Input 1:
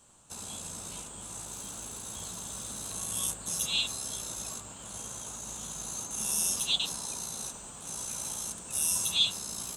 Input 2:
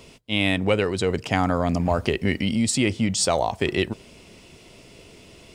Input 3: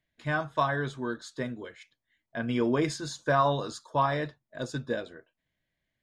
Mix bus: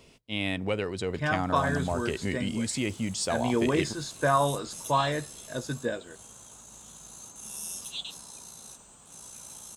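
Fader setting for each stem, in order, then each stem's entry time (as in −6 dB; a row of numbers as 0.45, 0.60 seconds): −8.5, −8.5, +0.5 decibels; 1.25, 0.00, 0.95 seconds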